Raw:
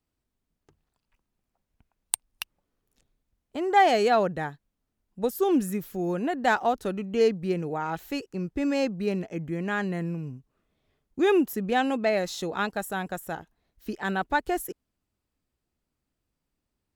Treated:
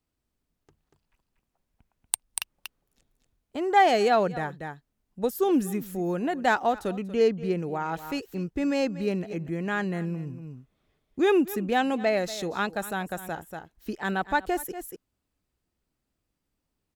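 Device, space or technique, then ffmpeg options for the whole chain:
ducked delay: -filter_complex "[0:a]asettb=1/sr,asplit=3[a][b][c];[a]atrim=end=7.114[d];[b]atrim=start=7.11:end=7.58,asetpts=PTS-STARTPTS,afade=t=in:d=0.004:c=qsin,afade=t=out:st=0.466:d=0.004:c=qsin,highshelf=f=4.5k:g=-5[e];[c]atrim=start=7.576[f];[d][e]acrossfade=d=0.004:c1=hsin:c2=qsin[g];[g][f]acrossfade=d=0.004:c1=qsin:c2=hsin,asplit=3[h][i][j];[i]adelay=238,volume=-5dB[k];[j]apad=whole_len=758294[l];[k][l]sidechaincompress=threshold=-49dB:ratio=3:attack=29:release=106[m];[h][m]amix=inputs=2:normalize=0"

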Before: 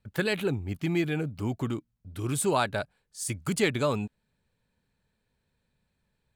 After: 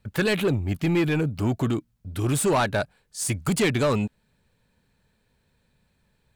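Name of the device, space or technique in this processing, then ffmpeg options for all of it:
saturation between pre-emphasis and de-emphasis: -af "highshelf=f=6.6k:g=9,asoftclip=type=tanh:threshold=-25dB,highshelf=f=6.6k:g=-9,volume=8.5dB"

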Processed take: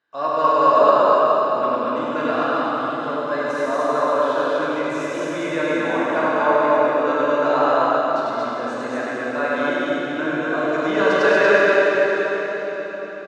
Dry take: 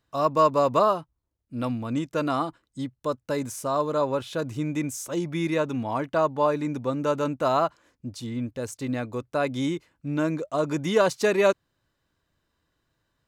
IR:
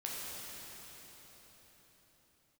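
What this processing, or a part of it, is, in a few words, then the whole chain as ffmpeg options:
station announcement: -filter_complex "[0:a]highpass=340,lowpass=3.9k,equalizer=f=1.6k:t=o:w=0.31:g=10,aecho=1:1:99.13|233.2:0.708|0.891[a];[1:a]atrim=start_sample=2205[b];[a][b]afir=irnorm=-1:irlink=0,volume=2dB"

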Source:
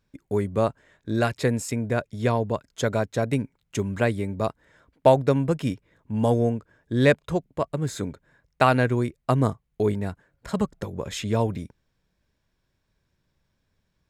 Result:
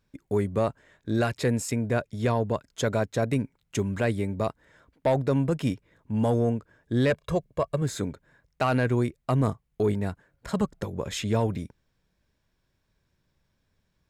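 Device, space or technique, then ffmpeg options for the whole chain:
soft clipper into limiter: -filter_complex "[0:a]asettb=1/sr,asplit=3[a][b][c];[a]atrim=end=7.104[d];[b]atrim=start=7.1:end=7.82,asetpts=PTS-STARTPTS,afade=t=in:d=0.004:c=qsin,afade=t=out:st=0.716:d=0.004:c=qsin,aecho=1:1:1.8:0.53,atrim=end_sample=31752[e];[c]atrim=start=7.816[f];[d][e]acrossfade=d=0.004:c1=hsin:c2=qsin[g];[g][f]acrossfade=d=0.004:c1=qsin:c2=hsin,asoftclip=type=tanh:threshold=-10dB,alimiter=limit=-16dB:level=0:latency=1:release=10"

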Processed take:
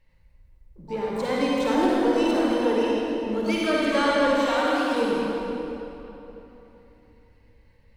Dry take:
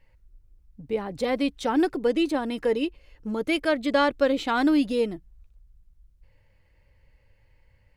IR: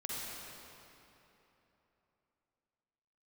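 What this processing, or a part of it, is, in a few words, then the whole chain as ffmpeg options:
shimmer-style reverb: -filter_complex "[0:a]asplit=3[a][b][c];[a]afade=t=out:st=4.27:d=0.02[d];[b]highpass=410,afade=t=in:st=4.27:d=0.02,afade=t=out:st=4.91:d=0.02[e];[c]afade=t=in:st=4.91:d=0.02[f];[d][e][f]amix=inputs=3:normalize=0,asplit=2[g][h];[h]asetrate=88200,aresample=44100,atempo=0.5,volume=-11dB[i];[g][i]amix=inputs=2:normalize=0[j];[1:a]atrim=start_sample=2205[k];[j][k]afir=irnorm=-1:irlink=0"

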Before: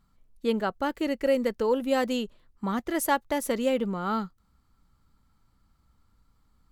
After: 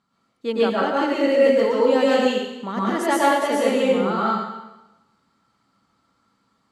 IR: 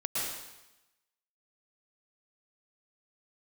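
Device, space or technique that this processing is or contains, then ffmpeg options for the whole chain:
supermarket ceiling speaker: -filter_complex "[0:a]highpass=230,lowpass=6.6k[a];[1:a]atrim=start_sample=2205[b];[a][b]afir=irnorm=-1:irlink=0,volume=2.5dB"

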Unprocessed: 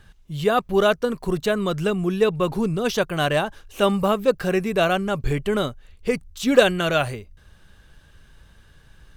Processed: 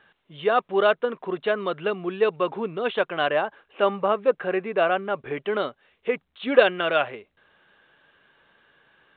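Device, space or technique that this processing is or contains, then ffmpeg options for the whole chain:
telephone: -filter_complex "[0:a]asettb=1/sr,asplit=3[a][b][c];[a]atrim=end=3.294[d];[b]atrim=start=3.29:end=5.37,asetpts=PTS-STARTPTS,afade=t=in:d=0.004:c=qsin,afade=t=out:st=2.076:d=0.004:c=qsin,highshelf=f=5.1k:t=q:w=3:g=10.5[e];[c]atrim=start=5.366[f];[d][e]acrossfade=d=0.004:c1=hsin:c2=qsin[g];[g][f]acrossfade=d=0.004:c1=qsin:c2=hsin,highpass=390,lowpass=3.3k" -ar 8000 -c:a pcm_mulaw

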